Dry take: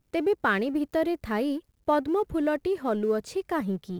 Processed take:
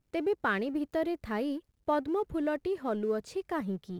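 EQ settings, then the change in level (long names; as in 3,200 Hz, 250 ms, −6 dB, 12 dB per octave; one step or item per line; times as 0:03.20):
high-shelf EQ 10,000 Hz −5.5 dB
−5.0 dB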